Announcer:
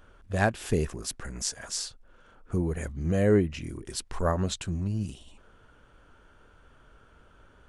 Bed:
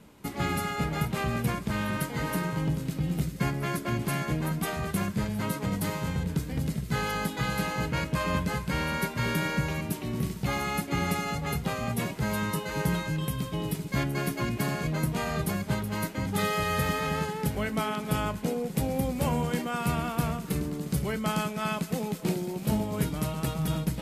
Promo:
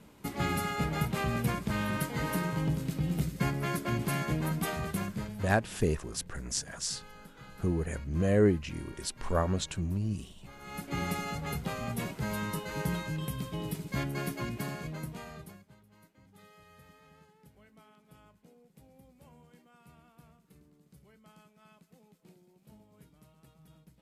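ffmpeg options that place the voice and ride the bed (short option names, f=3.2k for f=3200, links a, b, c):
-filter_complex "[0:a]adelay=5100,volume=-2dB[a];[1:a]volume=15dB,afade=t=out:st=4.68:d=0.99:silence=0.1,afade=t=in:st=10.59:d=0.4:silence=0.141254,afade=t=out:st=14.26:d=1.42:silence=0.0562341[b];[a][b]amix=inputs=2:normalize=0"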